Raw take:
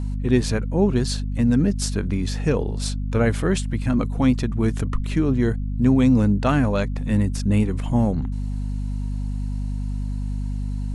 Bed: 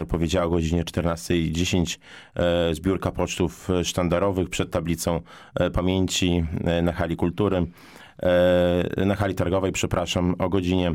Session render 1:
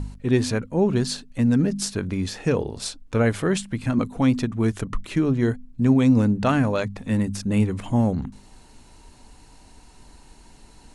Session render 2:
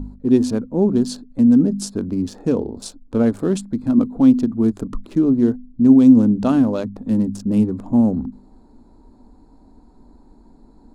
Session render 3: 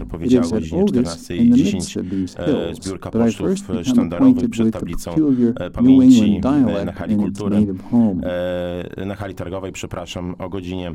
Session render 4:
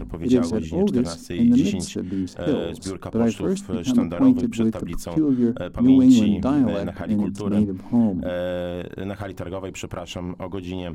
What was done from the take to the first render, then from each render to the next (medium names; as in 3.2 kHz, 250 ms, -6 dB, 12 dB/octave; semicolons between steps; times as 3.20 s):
de-hum 50 Hz, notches 5
local Wiener filter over 15 samples; graphic EQ 125/250/2000 Hz -7/+10/-12 dB
add bed -4 dB
trim -4 dB